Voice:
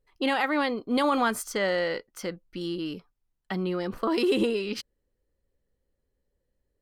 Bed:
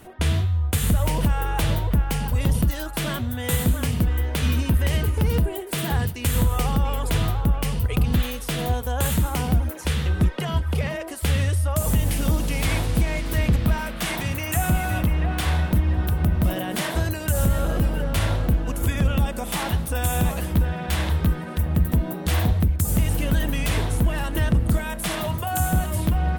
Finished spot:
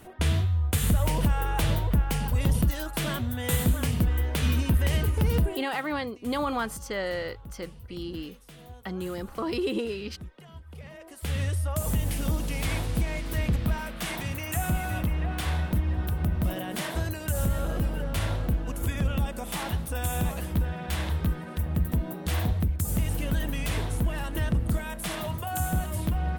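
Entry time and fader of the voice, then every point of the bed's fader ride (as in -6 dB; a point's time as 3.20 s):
5.35 s, -4.5 dB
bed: 5.52 s -3 dB
5.80 s -22.5 dB
10.66 s -22.5 dB
11.43 s -6 dB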